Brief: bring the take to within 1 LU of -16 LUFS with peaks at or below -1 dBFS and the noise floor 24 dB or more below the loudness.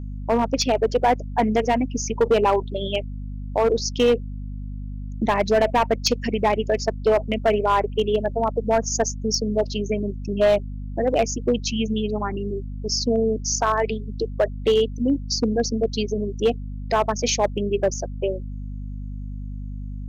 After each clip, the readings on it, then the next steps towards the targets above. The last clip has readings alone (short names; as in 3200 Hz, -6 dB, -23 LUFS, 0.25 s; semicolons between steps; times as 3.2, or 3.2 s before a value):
clipped 1.1%; flat tops at -12.0 dBFS; hum 50 Hz; harmonics up to 250 Hz; hum level -29 dBFS; loudness -22.5 LUFS; peak -12.0 dBFS; loudness target -16.0 LUFS
-> clip repair -12 dBFS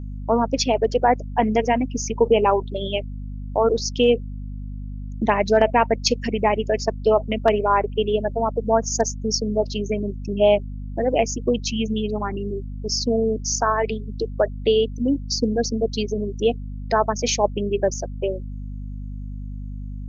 clipped 0.0%; hum 50 Hz; harmonics up to 250 Hz; hum level -29 dBFS
-> notches 50/100/150/200/250 Hz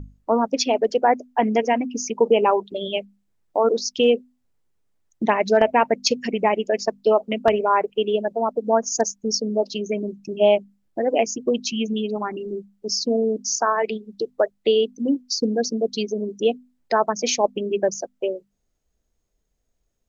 hum none; loudness -22.0 LUFS; peak -2.5 dBFS; loudness target -16.0 LUFS
-> gain +6 dB; limiter -1 dBFS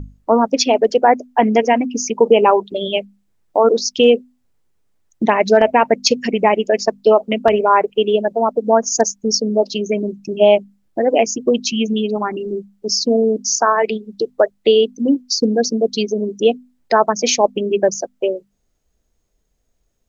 loudness -16.5 LUFS; peak -1.0 dBFS; noise floor -67 dBFS